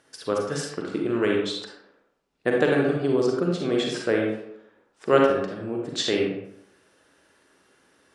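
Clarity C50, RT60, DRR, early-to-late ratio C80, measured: 1.0 dB, 0.75 s, −1.0 dB, 5.0 dB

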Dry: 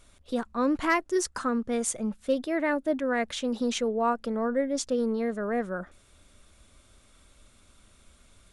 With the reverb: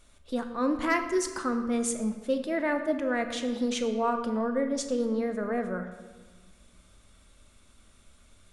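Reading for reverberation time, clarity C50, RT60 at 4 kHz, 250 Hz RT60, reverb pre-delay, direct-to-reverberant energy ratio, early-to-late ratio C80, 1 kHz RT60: 1.4 s, 8.5 dB, 1.0 s, 2.5 s, 3 ms, 6.0 dB, 10.0 dB, 1.4 s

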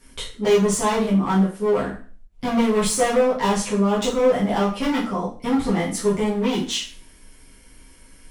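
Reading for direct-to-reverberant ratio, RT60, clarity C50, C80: −8.5 dB, 0.40 s, 7.0 dB, 12.0 dB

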